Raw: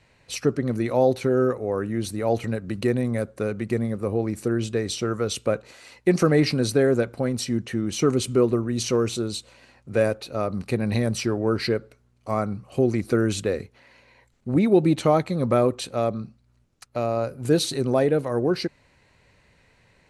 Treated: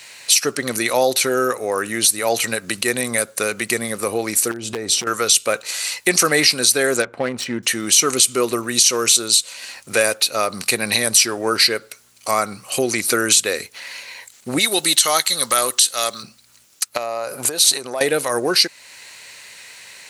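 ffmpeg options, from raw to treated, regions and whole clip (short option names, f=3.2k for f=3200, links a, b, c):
-filter_complex "[0:a]asettb=1/sr,asplit=3[a][b][c];[a]atrim=end=4.514[d];[b]atrim=start=4.51:end=5.07,asetpts=PTS-STARTPTS,afade=t=in:d=0.004:c=qsin,afade=t=out:st=0.556:d=0.004:c=qsin,tiltshelf=f=1.2k:g=9.5,acompressor=threshold=-26dB:ratio=8:attack=3.2:release=140:knee=1:detection=peak,aeval=exprs='0.0841*(abs(mod(val(0)/0.0841+3,4)-2)-1)':c=same[e];[c]atrim=start=5.066[f];[d][e]acrossfade=d=0.004:c1=hsin:c2=qsin[g];[g][f]acrossfade=d=0.004:c1=qsin:c2=hsin,asettb=1/sr,asplit=3[h][i][j];[h]atrim=end=7.024[k];[i]atrim=start=7.02:end=7.63,asetpts=PTS-STARTPTS,afade=t=in:d=0.004:c=qsin,afade=t=out:st=0.606:d=0.004:c=qsin,equalizer=f=4.8k:t=o:w=1.3:g=-8,adynamicsmooth=sensitivity=2:basefreq=1.7k[l];[j]atrim=start=7.626[m];[k][l]acrossfade=d=0.004:c1=hsin:c2=qsin[n];[n][m]acrossfade=d=0.004:c1=qsin:c2=hsin,asettb=1/sr,asplit=3[o][p][q];[o]atrim=end=14.594[r];[p]atrim=start=14.59:end=16.23,asetpts=PTS-STARTPTS,afade=t=in:d=0.004:c=qsin,afade=t=out:st=1.636:d=0.004:c=qsin,tiltshelf=f=1.2k:g=-9,bandreject=f=2.4k:w=5.3[s];[q]atrim=start=16.226[t];[r][s]acrossfade=d=0.004:c1=hsin:c2=qsin[u];[u][t]acrossfade=d=0.004:c1=qsin:c2=hsin,asettb=1/sr,asplit=3[v][w][x];[v]atrim=end=16.974[y];[w]atrim=start=16.97:end=18.01,asetpts=PTS-STARTPTS,afade=t=in:d=0.004:c=qsin,afade=t=out:st=1.036:d=0.004:c=qsin,equalizer=f=770:t=o:w=2:g=9,acompressor=threshold=-28dB:ratio=10:attack=3.2:release=140:knee=1:detection=peak[z];[x]atrim=start=18.006[aa];[y][z]acrossfade=d=0.004:c1=hsin:c2=qsin[ab];[ab][aa]acrossfade=d=0.004:c1=qsin:c2=hsin,aderivative,acompressor=threshold=-55dB:ratio=1.5,alimiter=level_in=32dB:limit=-1dB:release=50:level=0:latency=1,volume=-1dB"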